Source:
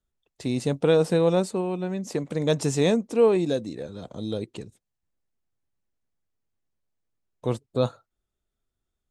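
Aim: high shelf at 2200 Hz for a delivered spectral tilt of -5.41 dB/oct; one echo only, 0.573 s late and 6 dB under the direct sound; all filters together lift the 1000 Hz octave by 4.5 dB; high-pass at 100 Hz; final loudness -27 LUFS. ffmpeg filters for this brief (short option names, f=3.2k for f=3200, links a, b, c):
-af "highpass=100,equalizer=f=1k:t=o:g=5,highshelf=f=2.2k:g=4,aecho=1:1:573:0.501,volume=-3.5dB"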